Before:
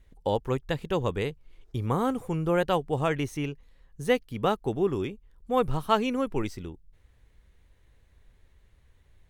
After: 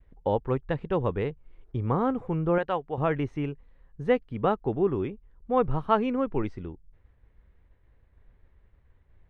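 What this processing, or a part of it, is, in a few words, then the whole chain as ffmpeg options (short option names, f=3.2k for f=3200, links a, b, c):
hearing-loss simulation: -filter_complex "[0:a]lowpass=1.8k,agate=range=-33dB:threshold=-56dB:ratio=3:detection=peak,asettb=1/sr,asplit=3[a][b][c];[a]atrim=end=2.584[d];[b]atrim=start=2.58:end=2.98,asetpts=PTS-STARTPTS,afade=t=in:d=0.004:c=qsin,afade=t=out:st=0.396:d=0.004:c=qsin,lowshelf=f=430:g=-11[e];[c]atrim=start=2.976[f];[d][e]acrossfade=d=0.004:c1=hsin:c2=qsin[g];[g][f]acrossfade=d=0.004:c1=qsin:c2=hsin,volume=1dB"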